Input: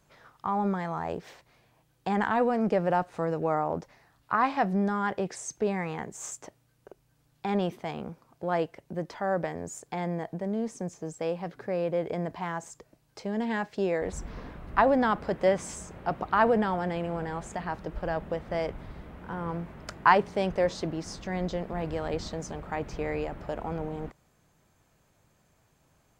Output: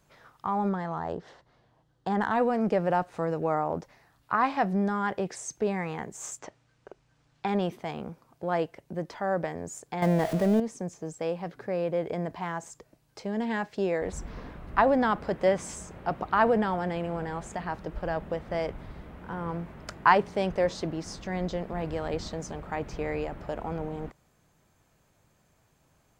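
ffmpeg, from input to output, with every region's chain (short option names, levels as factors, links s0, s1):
-filter_complex "[0:a]asettb=1/sr,asplit=3[s0][s1][s2];[s0]atrim=end=0.694[s3];[s1]atrim=start=0.69:end=2.33,asetpts=PTS-STARTPTS,afade=t=in:d=0.004:c=qsin,afade=t=out:st=1.636:d=0.004:c=qsin,equalizer=f=2400:w=4.5:g=-12.5,adynamicsmooth=sensitivity=6:basefreq=4900[s4];[s2]atrim=start=2.326[s5];[s3][s4]acrossfade=d=0.004:c1=hsin:c2=qsin[s6];[s6][s5]acrossfade=d=0.004:c1=qsin:c2=hsin,asettb=1/sr,asplit=3[s7][s8][s9];[s7]atrim=end=6.394[s10];[s8]atrim=start=6.39:end=7.48,asetpts=PTS-STARTPTS,afade=t=in:d=0.004:c=qsin,afade=t=out:st=1.086:d=0.004:c=qsin,lowpass=f=7600:w=0.5412,lowpass=f=7600:w=1.3066,equalizer=f=1600:w=0.45:g=5[s11];[s9]atrim=start=7.476[s12];[s10][s11]acrossfade=d=0.004:c1=hsin:c2=qsin[s13];[s13][s12]acrossfade=d=0.004:c1=qsin:c2=hsin,asettb=1/sr,asplit=3[s14][s15][s16];[s14]atrim=end=10.024[s17];[s15]atrim=start=10.02:end=10.6,asetpts=PTS-STARTPTS,afade=t=in:d=0.004:c=qsin,afade=t=out:st=0.576:d=0.004:c=qsin,aeval=exprs='val(0)+0.5*0.0112*sgn(val(0))':c=same,acontrast=71,aeval=exprs='val(0)+0.0158*sin(2*PI*640*n/s)':c=same[s18];[s16]atrim=start=10.596[s19];[s17][s18]acrossfade=d=0.004:c1=hsin:c2=qsin[s20];[s20][s19]acrossfade=d=0.004:c1=qsin:c2=hsin"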